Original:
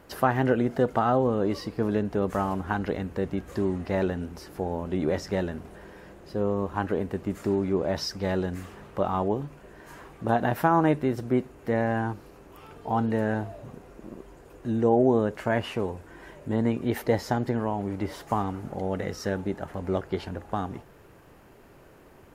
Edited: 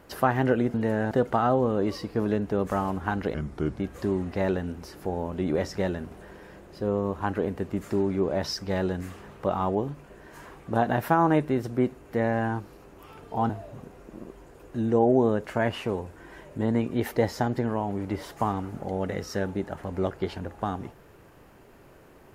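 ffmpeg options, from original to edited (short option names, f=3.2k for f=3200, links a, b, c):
-filter_complex "[0:a]asplit=6[a][b][c][d][e][f];[a]atrim=end=0.742[g];[b]atrim=start=13.028:end=13.402[h];[c]atrim=start=0.738:end=2.974[i];[d]atrim=start=2.97:end=3.33,asetpts=PTS-STARTPTS,asetrate=34839,aresample=44100,atrim=end_sample=20096,asetpts=PTS-STARTPTS[j];[e]atrim=start=3.326:end=13.032[k];[f]atrim=start=13.398[l];[g][h]acrossfade=d=0.004:c1=hsin:c2=hsin[m];[m][i]acrossfade=d=0.004:c1=hsin:c2=hsin[n];[n][j]acrossfade=d=0.004:c1=hsin:c2=hsin[o];[o][k]acrossfade=d=0.004:c1=hsin:c2=hsin[p];[p][l]acrossfade=d=0.004:c1=hsin:c2=hsin"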